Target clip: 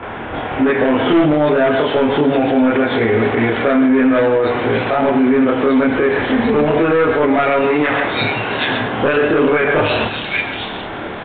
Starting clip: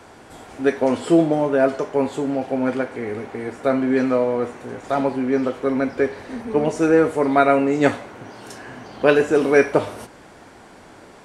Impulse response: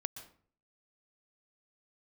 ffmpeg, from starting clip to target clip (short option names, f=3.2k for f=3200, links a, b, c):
-filter_complex "[0:a]acrossover=split=3100[a][b];[b]adelay=770[c];[a][c]amix=inputs=2:normalize=0,acrossover=split=1200[d][e];[d]asoftclip=type=hard:threshold=-15.5dB[f];[f][e]amix=inputs=2:normalize=0,asettb=1/sr,asplit=3[g][h][i];[g]atrim=end=7.644[j];[h]atrim=start=7.64:end=8.04,asetpts=PTS-STARTPTS,afade=t=in:d=0.004:c=qsin,afade=t=out:st=0.396:d=0.004:c=qsin,lowshelf=f=350:g=-10.5[k];[i]atrim=start=8.036[l];[j][k]acrossfade=d=0.004:c1=hsin:c2=qsin[m];[m][l]acrossfade=d=0.004:c1=qsin:c2=hsin,acompressor=threshold=-23dB:ratio=6,asplit=2[n][o];[o]highshelf=f=2k:g=11[p];[1:a]atrim=start_sample=2205,afade=t=out:st=0.2:d=0.01,atrim=end_sample=9261,adelay=27[q];[p][q]afir=irnorm=-1:irlink=0,volume=2dB[r];[n][r]amix=inputs=2:normalize=0,aresample=8000,aresample=44100,alimiter=level_in=19.5dB:limit=-1dB:release=50:level=0:latency=1,volume=-5.5dB"